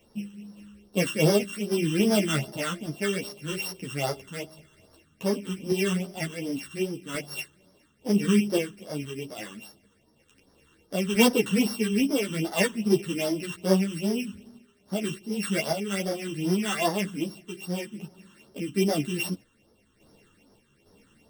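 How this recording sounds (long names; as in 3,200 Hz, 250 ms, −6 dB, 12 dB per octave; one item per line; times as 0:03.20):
a buzz of ramps at a fixed pitch in blocks of 16 samples
phaser sweep stages 8, 2.5 Hz, lowest notch 640–2,600 Hz
sample-and-hold tremolo
a shimmering, thickened sound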